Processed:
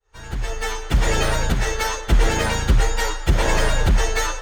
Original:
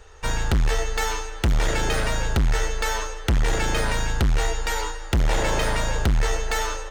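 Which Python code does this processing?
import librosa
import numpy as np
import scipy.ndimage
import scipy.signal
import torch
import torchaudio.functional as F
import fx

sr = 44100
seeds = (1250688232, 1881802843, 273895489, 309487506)

y = fx.fade_in_head(x, sr, length_s=1.67)
y = fx.stretch_vocoder_free(y, sr, factor=0.64)
y = y * librosa.db_to_amplitude(7.0)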